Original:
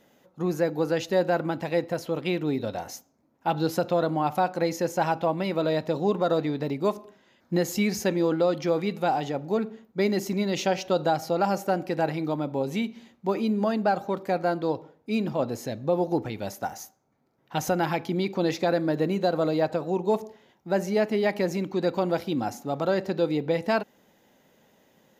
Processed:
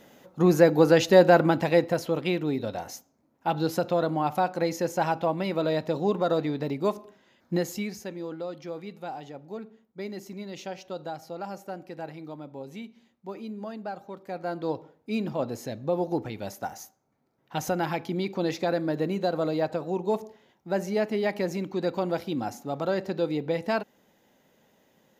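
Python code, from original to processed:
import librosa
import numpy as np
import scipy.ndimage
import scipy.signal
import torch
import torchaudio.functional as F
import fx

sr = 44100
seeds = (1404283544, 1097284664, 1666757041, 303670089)

y = fx.gain(x, sr, db=fx.line((1.41, 7.0), (2.49, -1.0), (7.53, -1.0), (8.03, -12.0), (14.2, -12.0), (14.7, -2.5)))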